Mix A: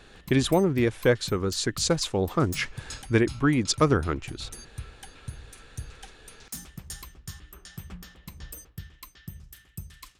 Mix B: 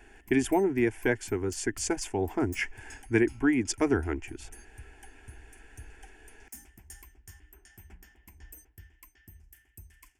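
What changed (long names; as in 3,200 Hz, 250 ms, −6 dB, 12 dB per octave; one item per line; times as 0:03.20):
background −6.0 dB
master: add phaser with its sweep stopped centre 800 Hz, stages 8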